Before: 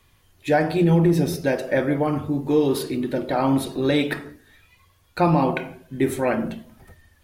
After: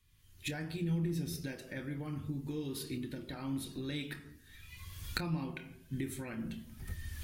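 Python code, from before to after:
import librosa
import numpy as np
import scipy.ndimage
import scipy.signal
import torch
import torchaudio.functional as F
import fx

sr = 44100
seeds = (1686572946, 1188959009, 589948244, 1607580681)

y = fx.recorder_agc(x, sr, target_db=-13.0, rise_db_per_s=32.0, max_gain_db=30)
y = fx.tone_stack(y, sr, knobs='6-0-2')
y = fx.doubler(y, sr, ms=26.0, db=-12.5)
y = F.gain(torch.from_numpy(y), 1.5).numpy()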